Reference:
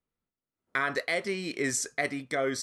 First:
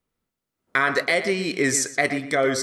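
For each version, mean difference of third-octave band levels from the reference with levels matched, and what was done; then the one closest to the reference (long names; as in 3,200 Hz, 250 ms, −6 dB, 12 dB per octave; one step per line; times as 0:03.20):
2.5 dB: tape delay 120 ms, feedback 23%, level −9.5 dB, low-pass 3,100 Hz
level +8 dB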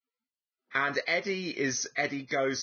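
3.5 dB: Ogg Vorbis 16 kbit/s 16,000 Hz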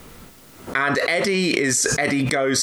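5.0 dB: envelope flattener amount 100%
level +6 dB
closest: first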